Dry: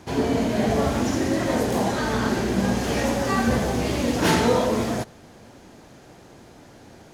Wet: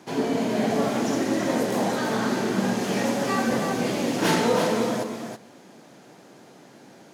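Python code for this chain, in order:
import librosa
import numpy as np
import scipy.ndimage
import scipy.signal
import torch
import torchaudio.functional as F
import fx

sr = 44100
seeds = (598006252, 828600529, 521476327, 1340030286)

y = scipy.signal.sosfilt(scipy.signal.butter(4, 150.0, 'highpass', fs=sr, output='sos'), x)
y = y + 10.0 ** (-6.5 / 20.0) * np.pad(y, (int(325 * sr / 1000.0), 0))[:len(y)]
y = F.gain(torch.from_numpy(y), -2.0).numpy()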